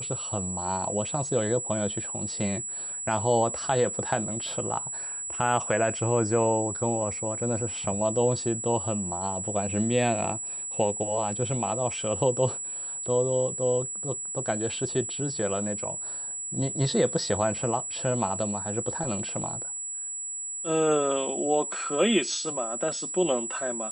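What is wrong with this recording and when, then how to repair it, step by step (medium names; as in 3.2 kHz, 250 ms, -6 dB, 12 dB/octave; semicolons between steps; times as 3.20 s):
whine 7.8 kHz -32 dBFS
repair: band-stop 7.8 kHz, Q 30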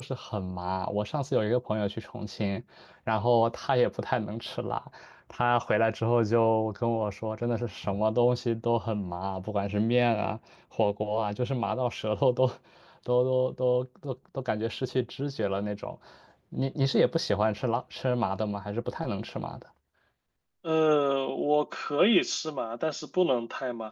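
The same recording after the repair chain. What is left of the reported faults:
nothing left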